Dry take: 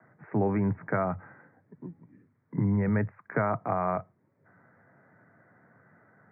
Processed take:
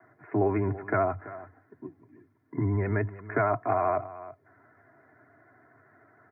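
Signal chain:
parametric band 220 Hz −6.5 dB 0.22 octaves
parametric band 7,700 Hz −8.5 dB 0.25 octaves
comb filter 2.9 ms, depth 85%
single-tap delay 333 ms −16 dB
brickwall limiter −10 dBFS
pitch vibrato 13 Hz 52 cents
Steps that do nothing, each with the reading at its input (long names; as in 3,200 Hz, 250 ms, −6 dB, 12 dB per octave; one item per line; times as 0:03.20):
parametric band 7,700 Hz: nothing at its input above 1,900 Hz
brickwall limiter −10 dBFS: peak of its input −12.5 dBFS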